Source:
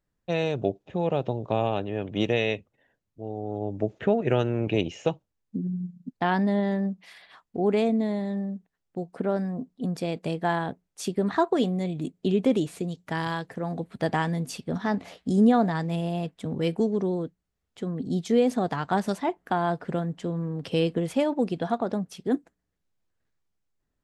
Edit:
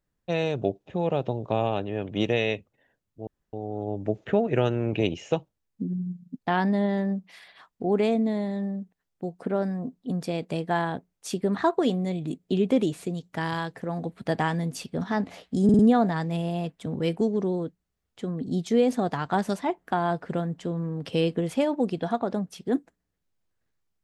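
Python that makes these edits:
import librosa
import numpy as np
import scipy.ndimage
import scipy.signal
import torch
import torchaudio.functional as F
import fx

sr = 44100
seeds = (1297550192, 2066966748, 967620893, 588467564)

y = fx.edit(x, sr, fx.insert_room_tone(at_s=3.27, length_s=0.26),
    fx.stutter(start_s=15.38, slice_s=0.05, count=4), tone=tone)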